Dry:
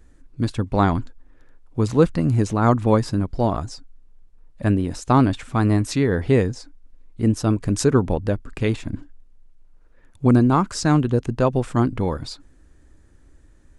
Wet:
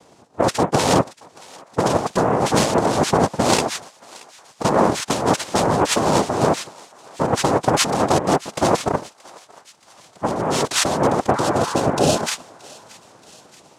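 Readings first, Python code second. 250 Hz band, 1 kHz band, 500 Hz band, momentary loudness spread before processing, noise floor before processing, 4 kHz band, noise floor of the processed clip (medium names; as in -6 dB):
-2.0 dB, +7.0 dB, +4.0 dB, 10 LU, -51 dBFS, +11.5 dB, -52 dBFS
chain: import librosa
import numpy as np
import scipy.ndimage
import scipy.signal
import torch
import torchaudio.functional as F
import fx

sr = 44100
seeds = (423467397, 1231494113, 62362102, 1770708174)

y = fx.noise_vocoder(x, sr, seeds[0], bands=2)
y = fx.over_compress(y, sr, threshold_db=-23.0, ratio=-1.0)
y = fx.spec_repair(y, sr, seeds[1], start_s=11.37, length_s=0.83, low_hz=840.0, high_hz=2400.0, source='both')
y = fx.echo_thinned(y, sr, ms=627, feedback_pct=66, hz=1100.0, wet_db=-20.0)
y = y * librosa.db_to_amplitude(5.5)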